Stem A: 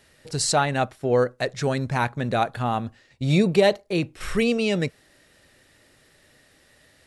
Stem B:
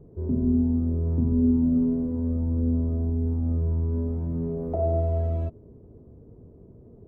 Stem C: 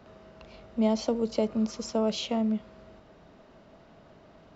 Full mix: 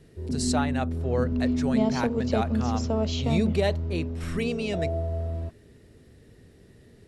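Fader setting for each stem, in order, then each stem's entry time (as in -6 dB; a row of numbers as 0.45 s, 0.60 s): -7.5 dB, -4.5 dB, -0.5 dB; 0.00 s, 0.00 s, 0.95 s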